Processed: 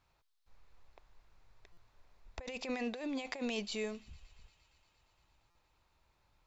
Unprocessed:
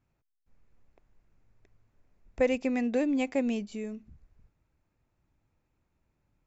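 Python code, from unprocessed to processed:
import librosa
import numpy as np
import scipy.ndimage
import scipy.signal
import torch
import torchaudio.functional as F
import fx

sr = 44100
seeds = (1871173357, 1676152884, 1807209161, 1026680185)

p1 = fx.graphic_eq(x, sr, hz=(125, 250, 1000, 4000), db=(-6, -9, 7, 11))
p2 = fx.over_compress(p1, sr, threshold_db=-37.0, ratio=-1.0)
p3 = p2 + fx.echo_wet_highpass(p2, sr, ms=116, feedback_pct=84, hz=2500.0, wet_db=-23.5, dry=0)
p4 = fx.buffer_glitch(p3, sr, at_s=(1.72, 5.5), block=256, repeats=8)
y = p4 * 10.0 ** (-2.5 / 20.0)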